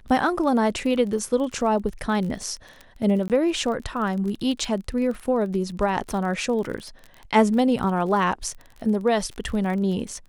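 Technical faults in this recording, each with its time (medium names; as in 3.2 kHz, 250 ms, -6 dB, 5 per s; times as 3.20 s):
crackle 34 per s -31 dBFS
3.28–3.30 s: dropout 18 ms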